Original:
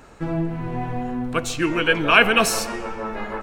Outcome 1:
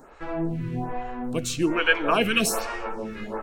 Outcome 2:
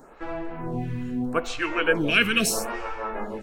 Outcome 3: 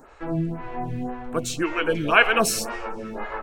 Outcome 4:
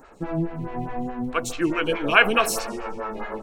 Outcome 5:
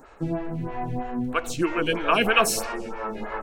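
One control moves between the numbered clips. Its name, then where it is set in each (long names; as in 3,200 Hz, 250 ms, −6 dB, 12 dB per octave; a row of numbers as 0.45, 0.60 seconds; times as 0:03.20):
phaser with staggered stages, speed: 1.2, 0.78, 1.9, 4.7, 3.1 Hertz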